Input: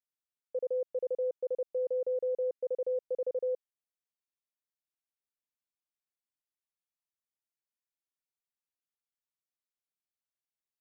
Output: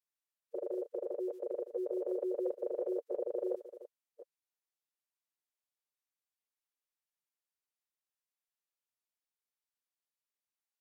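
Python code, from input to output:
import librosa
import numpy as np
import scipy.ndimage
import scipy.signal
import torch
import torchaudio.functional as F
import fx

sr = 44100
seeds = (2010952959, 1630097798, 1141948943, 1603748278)

y = fx.reverse_delay(x, sr, ms=352, wet_db=-12.5)
y = fx.pitch_keep_formants(y, sr, semitones=-5.5)
y = scipy.signal.sosfilt(scipy.signal.butter(2, 370.0, 'highpass', fs=sr, output='sos'), y)
y = y * librosa.db_to_amplitude(-1.5)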